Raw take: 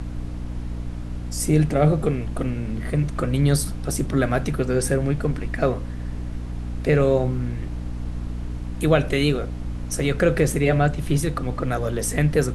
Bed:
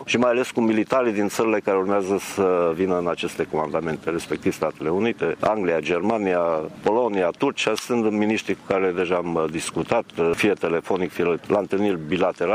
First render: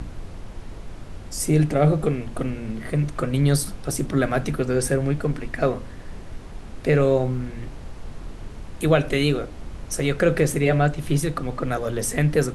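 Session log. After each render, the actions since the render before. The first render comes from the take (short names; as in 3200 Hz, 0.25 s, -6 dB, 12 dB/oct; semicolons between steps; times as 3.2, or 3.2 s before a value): de-hum 60 Hz, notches 5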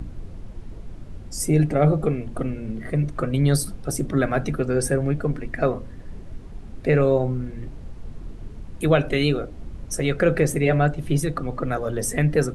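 denoiser 9 dB, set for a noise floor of -38 dBFS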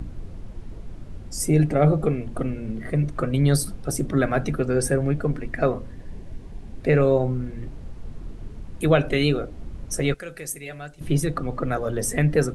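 5.92–6.81 notch 1300 Hz, Q 5.8; 10.14–11.01 pre-emphasis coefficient 0.9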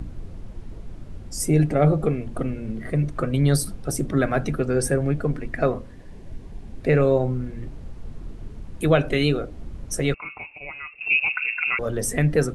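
5.81–6.24 low shelf 200 Hz -6 dB; 10.14–11.79 inverted band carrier 2700 Hz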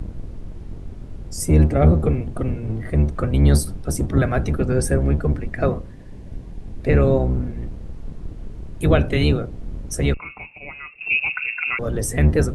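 octaver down 1 oct, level +4 dB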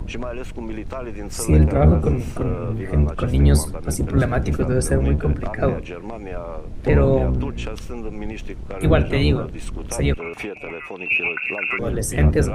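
add bed -11.5 dB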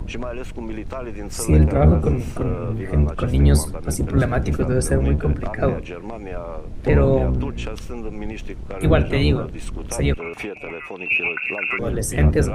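nothing audible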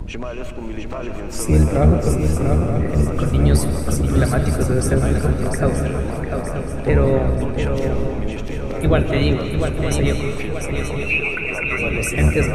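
swung echo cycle 0.929 s, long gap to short 3:1, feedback 44%, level -6 dB; digital reverb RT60 1.4 s, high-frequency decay 0.95×, pre-delay 0.115 s, DRR 8 dB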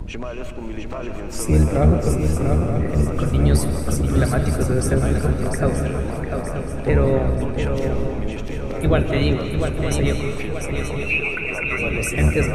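gain -1.5 dB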